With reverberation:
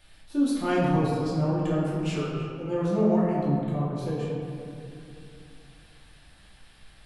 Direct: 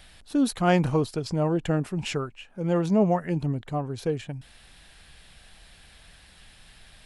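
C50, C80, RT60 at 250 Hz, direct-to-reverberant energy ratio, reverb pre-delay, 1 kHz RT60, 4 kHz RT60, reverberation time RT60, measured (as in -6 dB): -1.5 dB, 1.0 dB, 3.5 s, -8.5 dB, 3 ms, 2.7 s, 1.2 s, 2.8 s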